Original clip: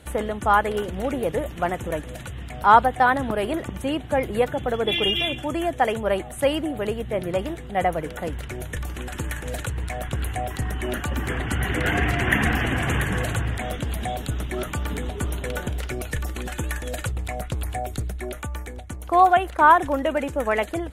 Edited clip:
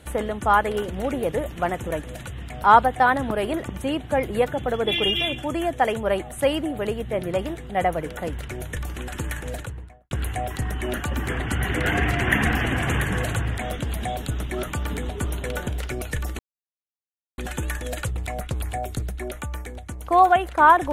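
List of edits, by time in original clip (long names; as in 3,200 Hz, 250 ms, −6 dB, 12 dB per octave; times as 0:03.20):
0:09.36–0:10.11: fade out and dull
0:16.39: splice in silence 0.99 s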